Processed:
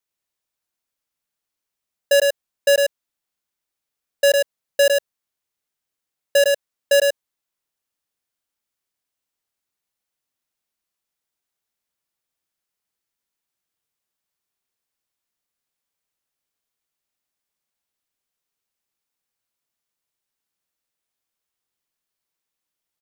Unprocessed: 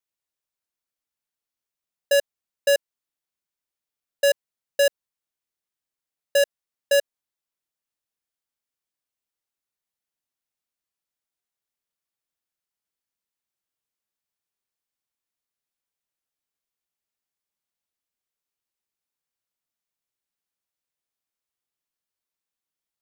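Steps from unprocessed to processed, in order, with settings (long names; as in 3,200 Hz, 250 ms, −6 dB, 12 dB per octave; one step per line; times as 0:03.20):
single-tap delay 106 ms −3.5 dB
level +3.5 dB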